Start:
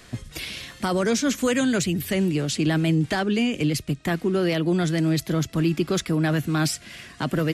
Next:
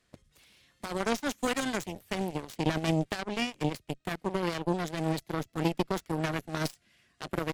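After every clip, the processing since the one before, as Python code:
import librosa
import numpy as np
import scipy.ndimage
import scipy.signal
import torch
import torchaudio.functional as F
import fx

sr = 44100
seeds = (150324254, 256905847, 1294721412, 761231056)

y = fx.cheby_harmonics(x, sr, harmonics=(3,), levels_db=(-9,), full_scale_db=-11.5)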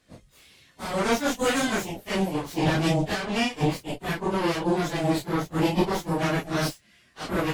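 y = fx.phase_scramble(x, sr, seeds[0], window_ms=100)
y = y * 10.0 ** (6.5 / 20.0)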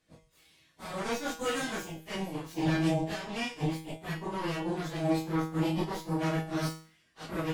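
y = fx.comb_fb(x, sr, f0_hz=160.0, decay_s=0.44, harmonics='all', damping=0.0, mix_pct=80)
y = y * 10.0 ** (1.5 / 20.0)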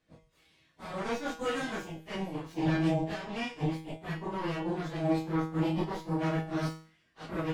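y = fx.lowpass(x, sr, hz=3000.0, slope=6)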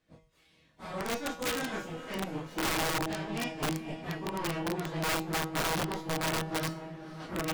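y = fx.echo_diffused(x, sr, ms=508, feedback_pct=47, wet_db=-12.0)
y = (np.mod(10.0 ** (25.0 / 20.0) * y + 1.0, 2.0) - 1.0) / 10.0 ** (25.0 / 20.0)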